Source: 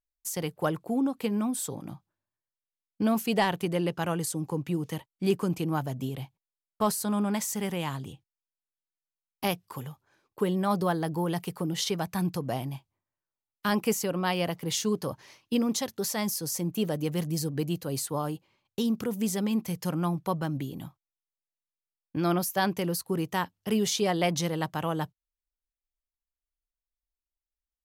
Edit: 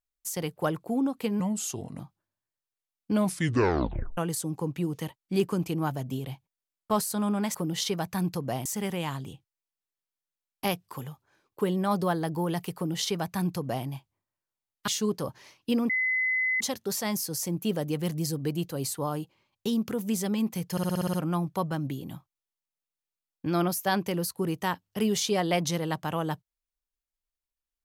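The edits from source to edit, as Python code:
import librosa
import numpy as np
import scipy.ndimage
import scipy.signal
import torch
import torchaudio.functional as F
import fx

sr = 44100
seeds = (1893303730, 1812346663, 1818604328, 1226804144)

y = fx.edit(x, sr, fx.speed_span(start_s=1.4, length_s=0.5, speed=0.84),
    fx.tape_stop(start_s=3.03, length_s=1.05),
    fx.duplicate(start_s=11.55, length_s=1.11, to_s=7.45),
    fx.cut(start_s=13.67, length_s=1.04),
    fx.insert_tone(at_s=15.73, length_s=0.71, hz=2030.0, db=-23.5),
    fx.stutter(start_s=19.84, slice_s=0.06, count=8), tone=tone)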